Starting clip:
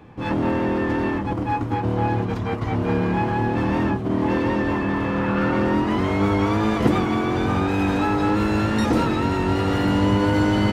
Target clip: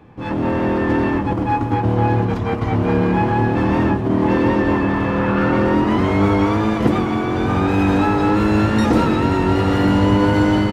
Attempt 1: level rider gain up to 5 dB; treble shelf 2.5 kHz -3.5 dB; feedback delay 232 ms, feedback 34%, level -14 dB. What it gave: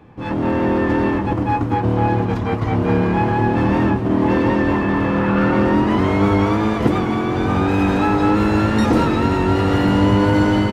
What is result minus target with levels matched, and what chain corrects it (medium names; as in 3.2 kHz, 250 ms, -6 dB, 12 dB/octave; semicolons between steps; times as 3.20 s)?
echo 108 ms late
level rider gain up to 5 dB; treble shelf 2.5 kHz -3.5 dB; feedback delay 124 ms, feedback 34%, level -14 dB